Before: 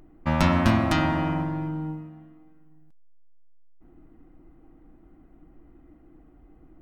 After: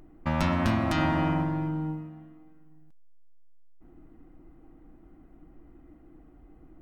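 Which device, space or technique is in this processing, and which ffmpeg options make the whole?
clipper into limiter: -af "asoftclip=type=hard:threshold=-9.5dB,alimiter=limit=-15.5dB:level=0:latency=1:release=142"

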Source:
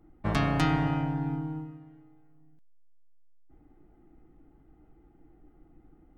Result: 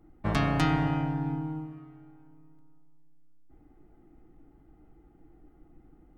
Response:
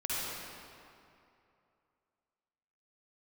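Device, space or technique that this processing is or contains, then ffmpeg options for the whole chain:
ducked reverb: -filter_complex "[0:a]asplit=3[a][b][c];[1:a]atrim=start_sample=2205[d];[b][d]afir=irnorm=-1:irlink=0[e];[c]apad=whole_len=272283[f];[e][f]sidechaincompress=threshold=-40dB:ratio=8:attack=16:release=105,volume=-18dB[g];[a][g]amix=inputs=2:normalize=0"

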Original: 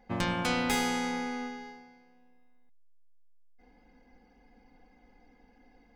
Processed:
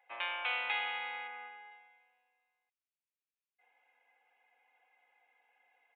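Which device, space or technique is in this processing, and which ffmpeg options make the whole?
musical greeting card: -filter_complex "[0:a]aresample=8000,aresample=44100,highpass=f=660:w=0.5412,highpass=f=660:w=1.3066,equalizer=f=2.5k:t=o:w=0.53:g=10,asplit=3[a][b][c];[a]afade=t=out:st=1.27:d=0.02[d];[b]lowpass=2.3k,afade=t=in:st=1.27:d=0.02,afade=t=out:st=1.7:d=0.02[e];[c]afade=t=in:st=1.7:d=0.02[f];[d][e][f]amix=inputs=3:normalize=0,volume=-6.5dB"

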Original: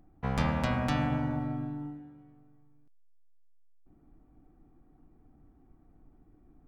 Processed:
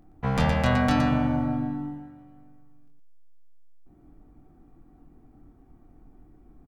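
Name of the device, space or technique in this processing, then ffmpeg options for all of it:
slapback doubling: -filter_complex "[0:a]asplit=3[a][b][c];[b]adelay=24,volume=-5dB[d];[c]adelay=117,volume=-5.5dB[e];[a][d][e]amix=inputs=3:normalize=0,volume=4.5dB"

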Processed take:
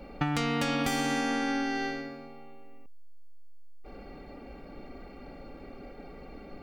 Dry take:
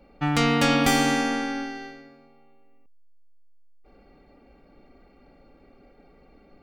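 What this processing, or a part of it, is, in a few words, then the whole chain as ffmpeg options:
serial compression, leveller first: -af "acompressor=threshold=-26dB:ratio=2.5,acompressor=threshold=-36dB:ratio=5,volume=9dB"

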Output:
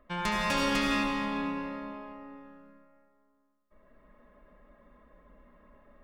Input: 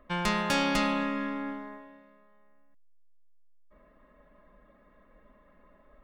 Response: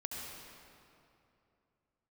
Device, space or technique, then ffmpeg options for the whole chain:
stairwell: -filter_complex "[1:a]atrim=start_sample=2205[a];[0:a][a]afir=irnorm=-1:irlink=0"

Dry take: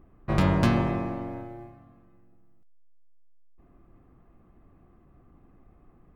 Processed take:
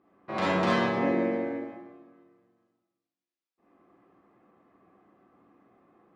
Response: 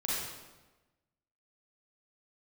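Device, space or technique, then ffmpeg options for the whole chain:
supermarket ceiling speaker: -filter_complex "[0:a]asettb=1/sr,asplit=3[a][b][c];[a]atrim=end=0.974[d];[b]atrim=start=0.97:end=1.52,asetpts=PTS-STARTPTS,afade=t=in:d=0.004:c=qsin,afade=t=out:st=0.546:d=0.004:c=qsin,equalizer=f=250:t=o:w=1:g=10,equalizer=f=500:t=o:w=1:g=10,equalizer=f=1k:t=o:w=1:g=-5,equalizer=f=2k:t=o:w=1:g=7,equalizer=f=8k:t=o:w=1:g=7[e];[c]atrim=start=1.516[f];[d][e]acrossfade=d=0.004:c1=hsin:c2=qsin[g];[g][f]acrossfade=d=0.004:c1=qsin:c2=hsin,highpass=330,lowpass=5.4k[h];[1:a]atrim=start_sample=2205[i];[h][i]afir=irnorm=-1:irlink=0,volume=-3dB"

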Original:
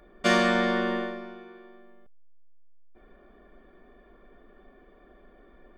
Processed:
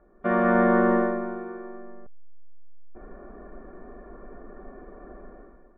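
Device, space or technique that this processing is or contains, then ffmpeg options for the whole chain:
action camera in a waterproof case: -af "lowpass=f=1.5k:w=0.5412,lowpass=f=1.5k:w=1.3066,dynaudnorm=f=100:g=9:m=15dB,volume=-3.5dB" -ar 32000 -c:a aac -b:a 96k

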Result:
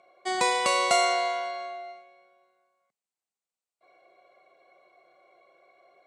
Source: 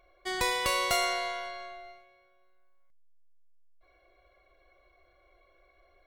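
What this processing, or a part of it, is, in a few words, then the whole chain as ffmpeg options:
television speaker: -af "highpass=f=170:w=0.5412,highpass=f=170:w=1.3066,equalizer=f=310:t=q:w=4:g=-4,equalizer=f=760:t=q:w=4:g=5,equalizer=f=1.7k:t=q:w=4:g=-7,equalizer=f=3.3k:t=q:w=4:g=-5,equalizer=f=5.4k:t=q:w=4:g=-4,equalizer=f=8.3k:t=q:w=4:g=5,lowpass=f=8.4k:w=0.5412,lowpass=f=8.4k:w=1.3066,volume=5dB"

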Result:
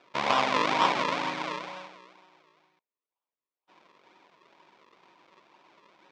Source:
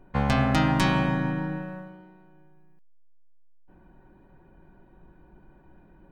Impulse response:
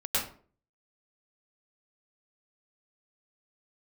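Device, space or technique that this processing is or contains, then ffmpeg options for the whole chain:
circuit-bent sampling toy: -af "acrusher=samples=40:mix=1:aa=0.000001:lfo=1:lforange=40:lforate=2.1,highpass=480,equalizer=f=1k:t=q:w=4:g=10,equalizer=f=2.3k:t=q:w=4:g=7,equalizer=f=3.5k:t=q:w=4:g=4,lowpass=f=5.6k:w=0.5412,lowpass=f=5.6k:w=1.3066"

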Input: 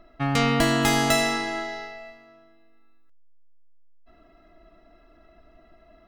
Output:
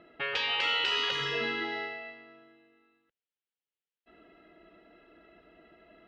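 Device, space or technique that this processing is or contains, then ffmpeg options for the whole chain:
kitchen radio: -af "afftfilt=real='re*lt(hypot(re,im),0.141)':imag='im*lt(hypot(re,im),0.141)':win_size=1024:overlap=0.75,asubboost=boost=2:cutoff=61,highpass=160,equalizer=f=260:t=q:w=4:g=-5,equalizer=f=460:t=q:w=4:g=5,equalizer=f=670:t=q:w=4:g=-8,equalizer=f=1.1k:t=q:w=4:g=-9,equalizer=f=3k:t=q:w=4:g=5,lowpass=f=3.6k:w=0.5412,lowpass=f=3.6k:w=1.3066,volume=2.5dB"

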